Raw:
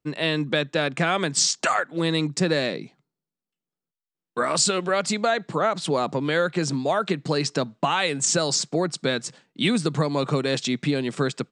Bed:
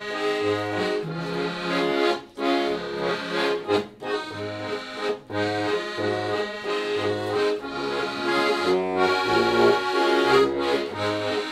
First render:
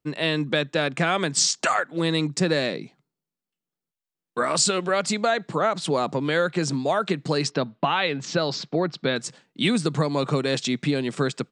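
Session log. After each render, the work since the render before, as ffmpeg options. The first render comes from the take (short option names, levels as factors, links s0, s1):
-filter_complex "[0:a]asettb=1/sr,asplit=3[s0][s1][s2];[s0]atrim=end=7.514[s3];[s1]atrim=start=7.51:end=9.16,asetpts=PTS-STARTPTS,afade=t=in:d=0.004:c=qsin,afade=t=out:st=1.646:d=0.004:c=qsin,lowpass=f=4300:w=0.5412,lowpass=f=4300:w=1.3066[s4];[s2]atrim=start=9.156[s5];[s3][s4]acrossfade=d=0.004:c1=hsin:c2=qsin[s6];[s6][s5]acrossfade=d=0.004:c1=qsin:c2=hsin"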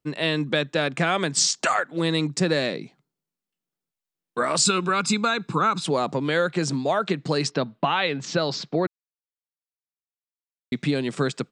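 -filter_complex "[0:a]asettb=1/sr,asplit=3[s0][s1][s2];[s0]atrim=end=4.654[s3];[s1]atrim=start=4.65:end=5.83,asetpts=PTS-STARTPTS,afade=t=in:d=0.004:c=qsin,afade=t=out:st=1.176:d=0.004:c=qsin,aecho=1:1:0.8:0.76,atrim=end_sample=52038[s4];[s2]atrim=start=5.826[s5];[s3][s4]acrossfade=d=0.004:c1=hsin:c2=qsin[s6];[s6][s5]acrossfade=d=0.004:c1=qsin:c2=hsin,asettb=1/sr,asplit=3[s7][s8][s9];[s7]atrim=end=6.804[s10];[s8]atrim=start=6.8:end=7.32,asetpts=PTS-STARTPTS,afade=t=in:d=0.004:c=qsin,afade=t=out:st=0.516:d=0.004:c=qsin,lowpass=7600[s11];[s9]atrim=start=7.316[s12];[s10][s11]acrossfade=d=0.004:c1=hsin:c2=qsin[s13];[s13][s12]acrossfade=d=0.004:c1=qsin:c2=hsin,asplit=3[s14][s15][s16];[s14]atrim=end=8.87,asetpts=PTS-STARTPTS,afade=t=out:st=8.866:d=0.004:c=hsin[s17];[s15]atrim=start=8.87:end=10.72,asetpts=PTS-STARTPTS,volume=0[s18];[s16]atrim=start=10.72,asetpts=PTS-STARTPTS,afade=t=in:d=0.004:c=hsin[s19];[s17][s18][s19]concat=n=3:v=0:a=1"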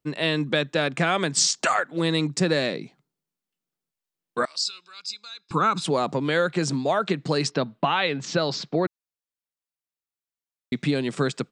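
-filter_complex "[0:a]asettb=1/sr,asplit=3[s0][s1][s2];[s0]atrim=end=4.454[s3];[s1]atrim=start=4.45:end=5.51,asetpts=PTS-STARTPTS,afade=t=in:d=0.004:c=qsin,afade=t=out:st=1.056:d=0.004:c=qsin,bandpass=f=4800:t=q:w=4.8[s4];[s2]atrim=start=5.506[s5];[s3][s4]acrossfade=d=0.004:c1=hsin:c2=qsin[s6];[s6][s5]acrossfade=d=0.004:c1=qsin:c2=hsin"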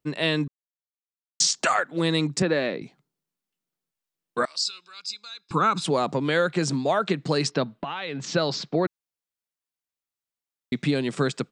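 -filter_complex "[0:a]asettb=1/sr,asplit=3[s0][s1][s2];[s0]atrim=end=2.424[s3];[s1]atrim=start=2.42:end=2.82,asetpts=PTS-STARTPTS,afade=t=in:d=0.004:c=qsin,afade=t=out:st=0.396:d=0.004:c=qsin,highpass=180,lowpass=2800[s4];[s2]atrim=start=2.816[s5];[s3][s4]acrossfade=d=0.004:c1=hsin:c2=qsin[s6];[s6][s5]acrossfade=d=0.004:c1=qsin:c2=hsin,asettb=1/sr,asplit=3[s7][s8][s9];[s7]atrim=end=7.804[s10];[s8]atrim=start=7.8:end=8.2,asetpts=PTS-STARTPTS,afade=t=in:d=0.004:c=qsin,afade=t=out:st=0.396:d=0.004:c=qsin,acompressor=threshold=0.0447:ratio=6:attack=3.2:release=140:knee=1:detection=peak[s11];[s9]atrim=start=8.196[s12];[s10][s11]acrossfade=d=0.004:c1=hsin:c2=qsin[s13];[s13][s12]acrossfade=d=0.004:c1=qsin:c2=hsin,asplit=3[s14][s15][s16];[s14]atrim=end=0.48,asetpts=PTS-STARTPTS,afade=t=out:st=0.476:d=0.004:c=hsin[s17];[s15]atrim=start=0.48:end=1.4,asetpts=PTS-STARTPTS,volume=0[s18];[s16]atrim=start=1.4,asetpts=PTS-STARTPTS,afade=t=in:d=0.004:c=hsin[s19];[s17][s18][s19]concat=n=3:v=0:a=1"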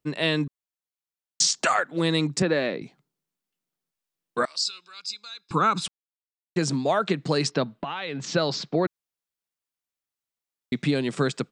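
-filter_complex "[0:a]asplit=3[s0][s1][s2];[s0]atrim=end=5.88,asetpts=PTS-STARTPTS,afade=t=out:st=5.876:d=0.004:c=hsin[s3];[s1]atrim=start=5.88:end=6.56,asetpts=PTS-STARTPTS,volume=0[s4];[s2]atrim=start=6.56,asetpts=PTS-STARTPTS,afade=t=in:d=0.004:c=hsin[s5];[s3][s4][s5]concat=n=3:v=0:a=1"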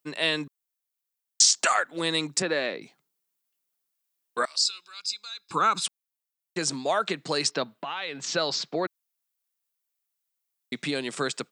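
-af "highpass=f=600:p=1,highshelf=f=8700:g=11.5"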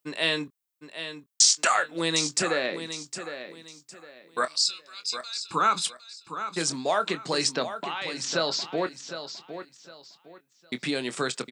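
-filter_complex "[0:a]asplit=2[s0][s1];[s1]adelay=24,volume=0.266[s2];[s0][s2]amix=inputs=2:normalize=0,aecho=1:1:759|1518|2277:0.299|0.0836|0.0234"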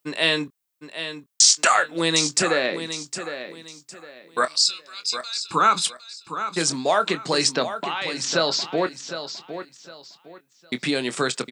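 -af "volume=1.78,alimiter=limit=0.708:level=0:latency=1"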